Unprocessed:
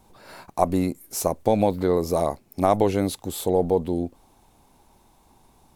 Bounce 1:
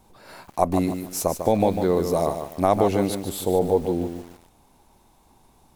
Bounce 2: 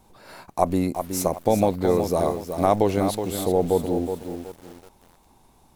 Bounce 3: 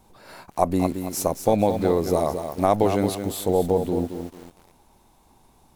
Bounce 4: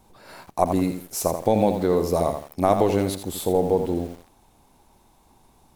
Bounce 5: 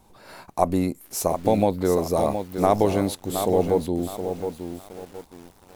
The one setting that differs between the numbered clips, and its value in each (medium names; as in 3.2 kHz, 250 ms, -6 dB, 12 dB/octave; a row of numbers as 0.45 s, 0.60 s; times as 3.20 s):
bit-crushed delay, time: 148 ms, 371 ms, 223 ms, 83 ms, 718 ms